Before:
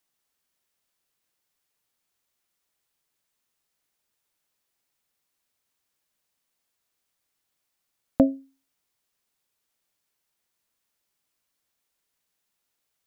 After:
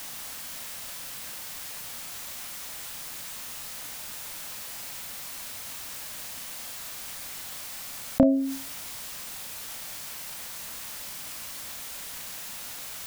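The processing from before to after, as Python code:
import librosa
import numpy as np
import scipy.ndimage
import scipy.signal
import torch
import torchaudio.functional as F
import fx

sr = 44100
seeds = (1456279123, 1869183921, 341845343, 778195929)

y = fx.peak_eq(x, sr, hz=380.0, db=-11.5, octaves=0.33)
y = fx.doubler(y, sr, ms=31.0, db=-8.0)
y = fx.env_flatten(y, sr, amount_pct=70)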